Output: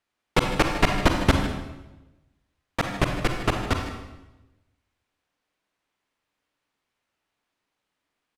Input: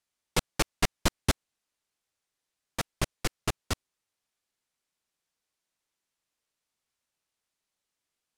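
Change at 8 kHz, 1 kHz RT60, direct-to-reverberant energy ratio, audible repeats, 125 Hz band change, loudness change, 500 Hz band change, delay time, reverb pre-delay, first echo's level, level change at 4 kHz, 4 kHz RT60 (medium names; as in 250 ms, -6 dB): -3.0 dB, 0.95 s, 3.0 dB, 1, +8.5 dB, +7.0 dB, +9.5 dB, 154 ms, 36 ms, -13.5 dB, +4.0 dB, 0.85 s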